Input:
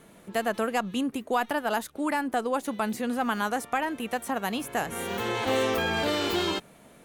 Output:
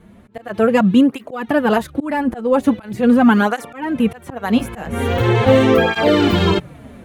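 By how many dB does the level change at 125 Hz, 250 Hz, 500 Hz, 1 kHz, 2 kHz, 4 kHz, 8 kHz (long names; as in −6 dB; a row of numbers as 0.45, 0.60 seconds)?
+20.0 dB, +15.5 dB, +12.5 dB, +7.0 dB, +8.0 dB, +6.0 dB, can't be measured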